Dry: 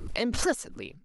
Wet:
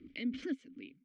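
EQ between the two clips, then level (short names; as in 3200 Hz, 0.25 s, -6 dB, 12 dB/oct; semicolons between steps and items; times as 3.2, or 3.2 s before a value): vowel filter i; air absorption 100 m; +1.5 dB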